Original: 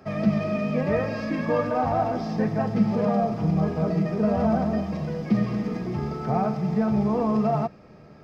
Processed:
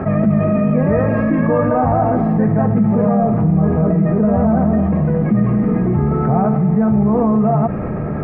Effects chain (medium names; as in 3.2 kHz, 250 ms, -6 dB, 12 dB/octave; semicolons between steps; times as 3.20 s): low-pass 1.9 kHz 24 dB/octave; bass shelf 270 Hz +7 dB; level flattener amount 70%